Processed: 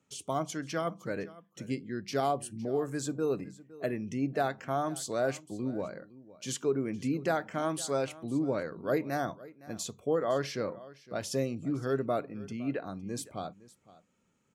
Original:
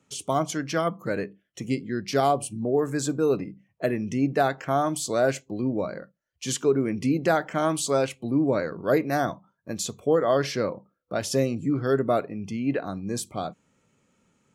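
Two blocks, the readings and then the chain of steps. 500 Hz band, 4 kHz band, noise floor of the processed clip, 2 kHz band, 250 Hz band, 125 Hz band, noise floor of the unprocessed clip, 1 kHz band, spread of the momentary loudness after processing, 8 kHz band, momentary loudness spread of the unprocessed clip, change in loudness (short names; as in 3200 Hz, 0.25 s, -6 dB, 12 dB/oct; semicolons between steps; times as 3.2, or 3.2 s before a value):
-7.5 dB, -7.5 dB, -72 dBFS, -7.5 dB, -7.5 dB, -7.5 dB, -75 dBFS, -7.5 dB, 10 LU, -7.5 dB, 9 LU, -7.5 dB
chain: echo 0.511 s -19.5 dB; gain -7.5 dB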